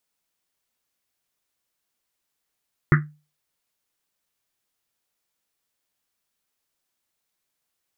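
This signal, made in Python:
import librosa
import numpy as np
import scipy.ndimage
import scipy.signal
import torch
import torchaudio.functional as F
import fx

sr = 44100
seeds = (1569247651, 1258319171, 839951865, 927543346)

y = fx.risset_drum(sr, seeds[0], length_s=1.1, hz=150.0, decay_s=0.32, noise_hz=1600.0, noise_width_hz=690.0, noise_pct=30)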